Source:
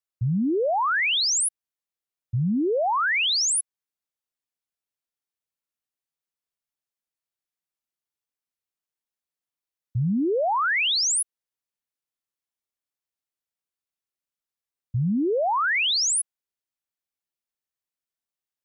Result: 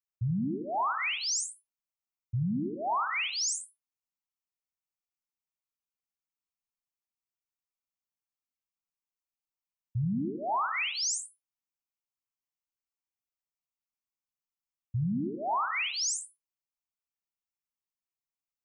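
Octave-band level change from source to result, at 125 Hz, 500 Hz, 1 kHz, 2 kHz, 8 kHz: -5.5 dB, -13.5 dB, -5.5 dB, -10.0 dB, -8.5 dB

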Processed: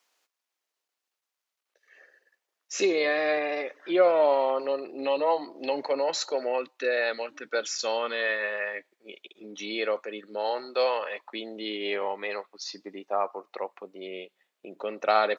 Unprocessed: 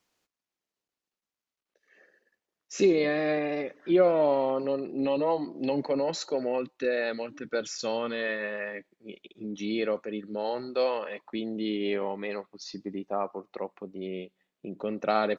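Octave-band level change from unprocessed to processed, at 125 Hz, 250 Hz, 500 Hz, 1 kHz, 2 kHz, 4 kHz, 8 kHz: under -15 dB, -6.0 dB, +1.0 dB, +4.0 dB, +5.0 dB, +5.0 dB, no reading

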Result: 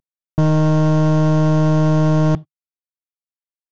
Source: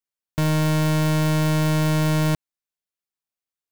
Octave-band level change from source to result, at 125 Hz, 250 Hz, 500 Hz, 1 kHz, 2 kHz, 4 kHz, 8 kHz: +5.5 dB, +6.0 dB, +7.0 dB, +4.0 dB, -3.5 dB, -5.5 dB, no reading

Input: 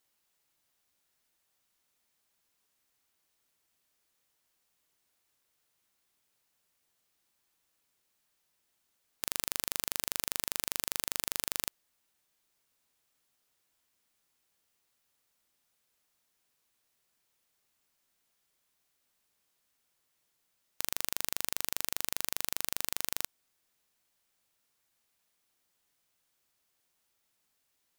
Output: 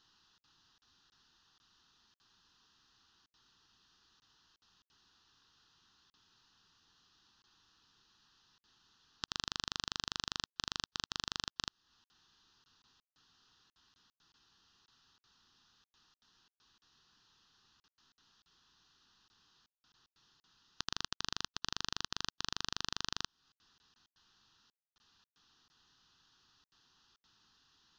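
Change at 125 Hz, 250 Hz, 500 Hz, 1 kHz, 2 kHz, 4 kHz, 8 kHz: +1.0 dB, -1.0 dB, -9.0 dB, 0.0 dB, -3.0 dB, +1.5 dB, -11.0 dB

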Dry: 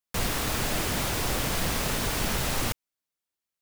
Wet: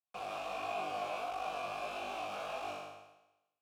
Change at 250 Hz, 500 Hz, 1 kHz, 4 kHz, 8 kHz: -20.0 dB, -6.0 dB, -3.5 dB, -16.5 dB, -26.5 dB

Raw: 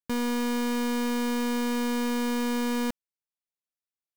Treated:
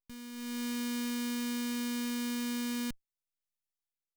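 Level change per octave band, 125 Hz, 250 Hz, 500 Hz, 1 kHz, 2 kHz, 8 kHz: no reading, -7.5 dB, -16.0 dB, -14.5 dB, -8.0 dB, -3.0 dB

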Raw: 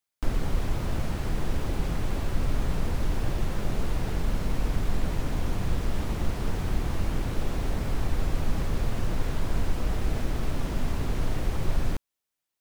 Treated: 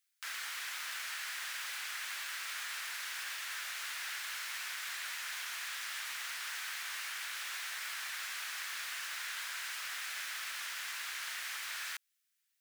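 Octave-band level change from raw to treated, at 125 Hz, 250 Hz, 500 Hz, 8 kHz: under -40 dB, under -40 dB, -29.0 dB, +4.5 dB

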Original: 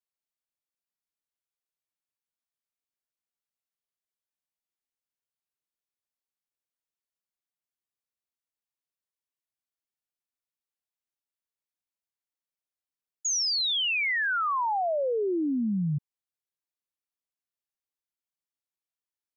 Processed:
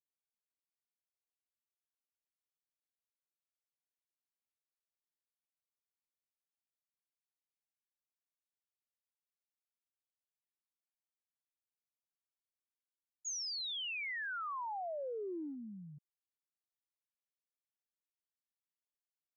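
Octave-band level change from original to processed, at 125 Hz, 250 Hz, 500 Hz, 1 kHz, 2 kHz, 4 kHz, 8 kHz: -23.5 dB, -17.5 dB, -13.5 dB, -13.5 dB, -13.5 dB, -13.5 dB, no reading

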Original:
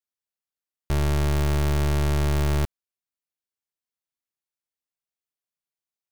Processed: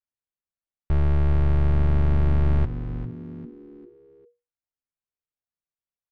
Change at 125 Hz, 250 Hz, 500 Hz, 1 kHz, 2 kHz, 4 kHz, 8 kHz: +2.5 dB, 0.0 dB, -3.5 dB, -4.5 dB, -6.5 dB, under -10 dB, under -25 dB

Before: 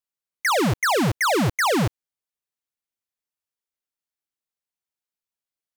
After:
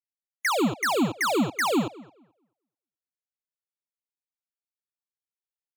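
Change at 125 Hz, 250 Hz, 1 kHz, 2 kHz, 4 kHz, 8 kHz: -11.0 dB, -1.0 dB, -4.5 dB, -4.5 dB, -4.5 dB, -4.5 dB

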